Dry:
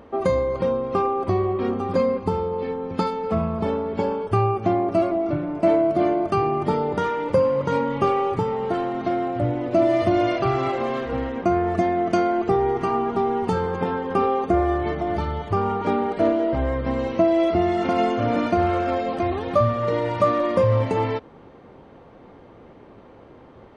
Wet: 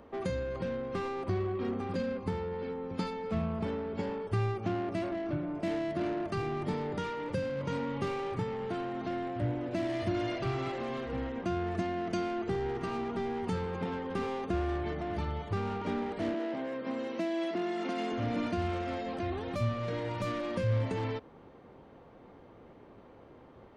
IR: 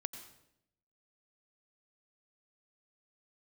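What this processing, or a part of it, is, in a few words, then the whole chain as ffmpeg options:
one-band saturation: -filter_complex "[0:a]acrossover=split=320|2200[a][b][c];[b]asoftclip=type=tanh:threshold=-29.5dB[d];[a][d][c]amix=inputs=3:normalize=0,asettb=1/sr,asplit=3[e][f][g];[e]atrim=end=16.344[h];[f]atrim=start=16.34:end=18.12,asetpts=PTS-STARTPTS,afade=t=in:d=0.004:c=qsin,afade=t=out:st=1.776:d=0.004:c=qsin,highpass=f=210:w=0.5412,highpass=f=210:w=1.3066[i];[g]atrim=start=18.116[j];[h][i]acrossfade=d=0.004:c1=hsin:c2=qsin[k];[k][j]acrossfade=d=0.004:c1=qsin:c2=hsin,volume=-7.5dB"

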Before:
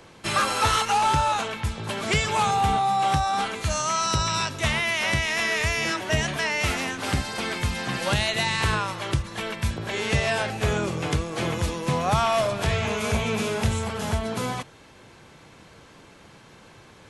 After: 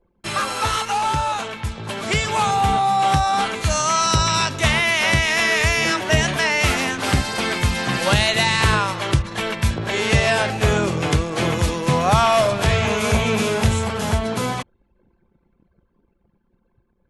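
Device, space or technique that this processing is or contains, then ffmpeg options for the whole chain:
voice memo with heavy noise removal: -af "anlmdn=0.398,dynaudnorm=f=480:g=11:m=8dB"

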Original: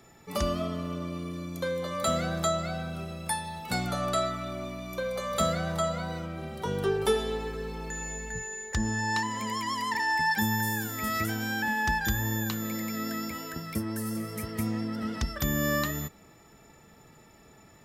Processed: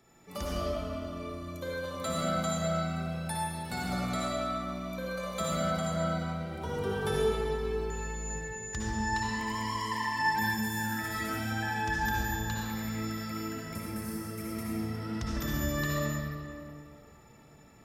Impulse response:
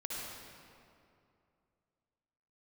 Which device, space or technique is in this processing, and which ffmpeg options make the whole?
stairwell: -filter_complex "[1:a]atrim=start_sample=2205[a];[0:a][a]afir=irnorm=-1:irlink=0,volume=-4dB"

